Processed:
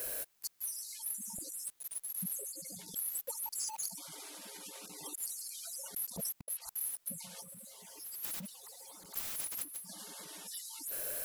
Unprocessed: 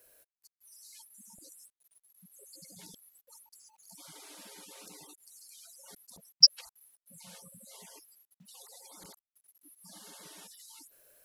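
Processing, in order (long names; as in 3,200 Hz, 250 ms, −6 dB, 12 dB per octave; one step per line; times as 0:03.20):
0:07.42–0:09.88: converter with a step at zero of −52.5 dBFS
high-shelf EQ 11,000 Hz +4.5 dB
compressor whose output falls as the input rises −57 dBFS, ratio −0.5
level +8 dB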